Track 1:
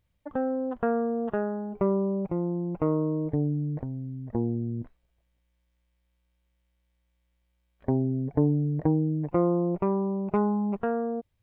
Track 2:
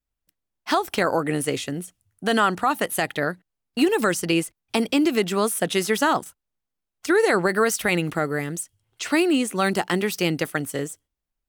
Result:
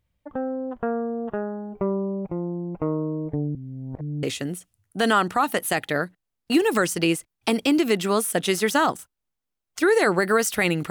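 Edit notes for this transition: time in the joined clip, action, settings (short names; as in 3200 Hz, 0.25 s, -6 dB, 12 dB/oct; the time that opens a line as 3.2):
track 1
3.55–4.23 reverse
4.23 switch to track 2 from 1.5 s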